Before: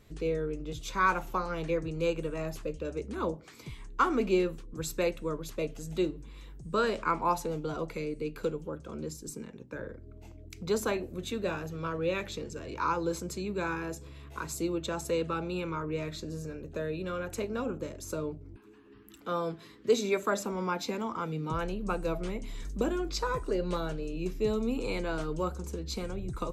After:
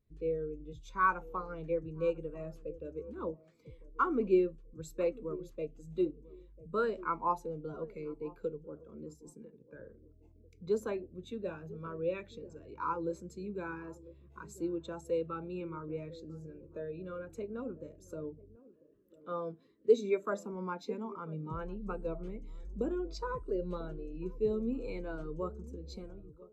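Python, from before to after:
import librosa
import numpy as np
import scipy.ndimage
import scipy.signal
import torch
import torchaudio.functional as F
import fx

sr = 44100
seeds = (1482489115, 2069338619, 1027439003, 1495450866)

y = fx.fade_out_tail(x, sr, length_s=0.57)
y = fx.echo_banded(y, sr, ms=996, feedback_pct=41, hz=370.0, wet_db=-12)
y = fx.spectral_expand(y, sr, expansion=1.5)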